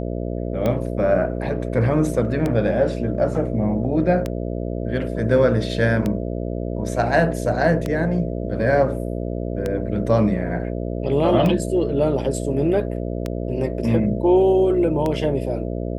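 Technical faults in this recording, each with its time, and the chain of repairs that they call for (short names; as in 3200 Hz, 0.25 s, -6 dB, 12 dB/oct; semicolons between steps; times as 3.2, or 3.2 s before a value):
buzz 60 Hz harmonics 11 -26 dBFS
tick 33 1/3 rpm -11 dBFS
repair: de-click; de-hum 60 Hz, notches 11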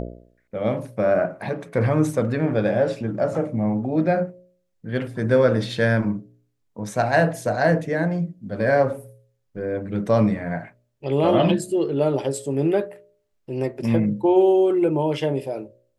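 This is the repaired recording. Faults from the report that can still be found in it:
none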